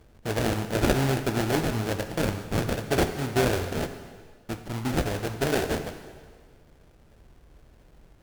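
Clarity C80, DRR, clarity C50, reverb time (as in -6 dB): 10.5 dB, 7.5 dB, 9.5 dB, 1.7 s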